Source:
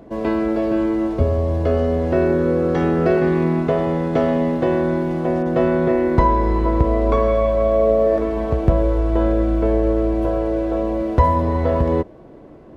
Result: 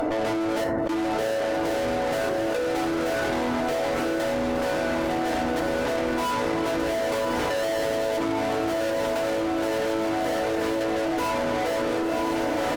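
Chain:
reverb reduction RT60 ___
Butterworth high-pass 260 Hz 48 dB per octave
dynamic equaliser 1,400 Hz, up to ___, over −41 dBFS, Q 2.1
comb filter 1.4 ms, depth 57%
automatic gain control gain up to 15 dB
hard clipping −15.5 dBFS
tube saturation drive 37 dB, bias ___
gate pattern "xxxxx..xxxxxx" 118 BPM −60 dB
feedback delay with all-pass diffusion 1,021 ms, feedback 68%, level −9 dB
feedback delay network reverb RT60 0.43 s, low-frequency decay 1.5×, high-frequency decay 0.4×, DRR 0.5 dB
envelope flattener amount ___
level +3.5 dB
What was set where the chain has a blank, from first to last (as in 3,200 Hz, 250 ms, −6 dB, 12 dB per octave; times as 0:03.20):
1.8 s, −4 dB, 0.7, 100%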